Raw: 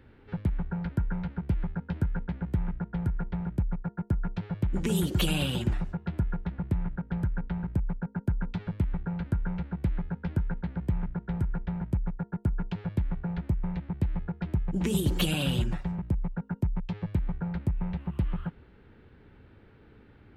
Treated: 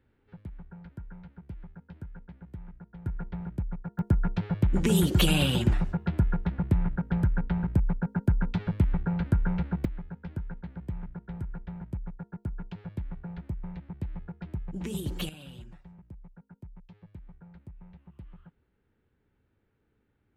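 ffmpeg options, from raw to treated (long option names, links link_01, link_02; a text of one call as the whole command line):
ffmpeg -i in.wav -af "asetnsamples=nb_out_samples=441:pad=0,asendcmd='3.06 volume volume -4dB;3.99 volume volume 4dB;9.85 volume volume -7dB;15.29 volume volume -18.5dB',volume=-14dB" out.wav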